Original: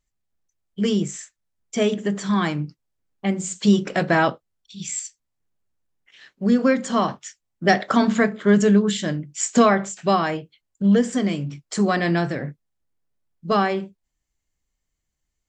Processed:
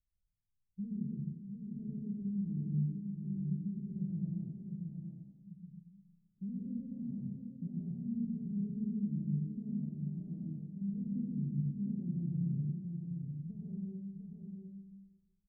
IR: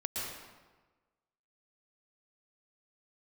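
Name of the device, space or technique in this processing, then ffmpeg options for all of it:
club heard from the street: -filter_complex "[0:a]alimiter=limit=-20dB:level=0:latency=1,lowpass=f=190:w=0.5412,lowpass=f=190:w=1.3066[a];[1:a]atrim=start_sample=2205[b];[a][b]afir=irnorm=-1:irlink=0,aecho=1:1:702:0.531,volume=-6.5dB"

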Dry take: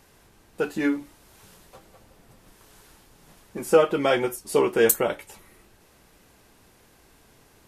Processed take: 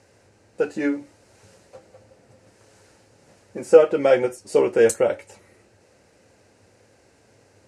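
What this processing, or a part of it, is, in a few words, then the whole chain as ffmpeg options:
car door speaker: -af "highpass=96,equalizer=f=100:t=q:w=4:g=10,equalizer=f=160:t=q:w=4:g=-5,equalizer=f=530:t=q:w=4:g=9,equalizer=f=1.1k:t=q:w=4:g=-7,equalizer=f=3.4k:t=q:w=4:g=-9,lowpass=f=8.6k:w=0.5412,lowpass=f=8.6k:w=1.3066"

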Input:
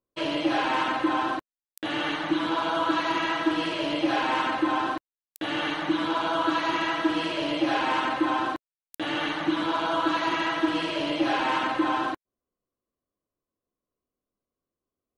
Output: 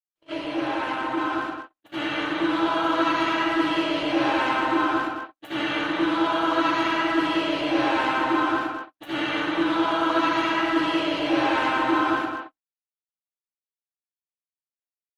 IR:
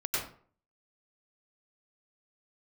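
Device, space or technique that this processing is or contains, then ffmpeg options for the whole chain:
speakerphone in a meeting room: -filter_complex "[1:a]atrim=start_sample=2205[a];[0:a][a]afir=irnorm=-1:irlink=0,asplit=2[b][c];[c]adelay=210,highpass=300,lowpass=3.4k,asoftclip=type=hard:threshold=-15dB,volume=-7dB[d];[b][d]amix=inputs=2:normalize=0,dynaudnorm=f=410:g=9:m=16.5dB,agate=range=-49dB:threshold=-25dB:ratio=16:detection=peak,volume=-8.5dB" -ar 48000 -c:a libopus -b:a 32k

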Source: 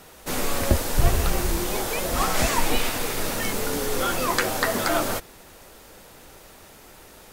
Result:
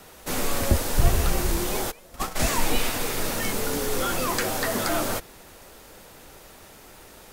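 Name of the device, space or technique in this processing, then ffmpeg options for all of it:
one-band saturation: -filter_complex "[0:a]asplit=3[a][b][c];[a]afade=t=out:st=1.9:d=0.02[d];[b]agate=range=-23dB:threshold=-20dB:ratio=16:detection=peak,afade=t=in:st=1.9:d=0.02,afade=t=out:st=2.43:d=0.02[e];[c]afade=t=in:st=2.43:d=0.02[f];[d][e][f]amix=inputs=3:normalize=0,acrossover=split=320|4700[g][h][i];[h]asoftclip=type=tanh:threshold=-22.5dB[j];[g][j][i]amix=inputs=3:normalize=0"

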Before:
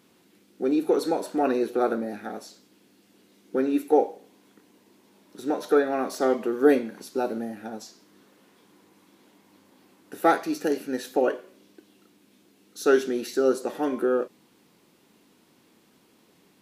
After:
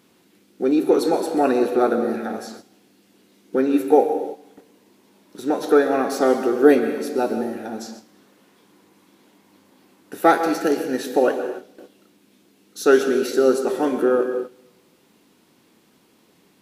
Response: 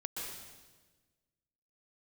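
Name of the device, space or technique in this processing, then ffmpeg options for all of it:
keyed gated reverb: -filter_complex "[0:a]asplit=3[a][b][c];[1:a]atrim=start_sample=2205[d];[b][d]afir=irnorm=-1:irlink=0[e];[c]apad=whole_len=732544[f];[e][f]sidechaingate=range=-16dB:threshold=-53dB:ratio=16:detection=peak,volume=-4dB[g];[a][g]amix=inputs=2:normalize=0,volume=2dB"

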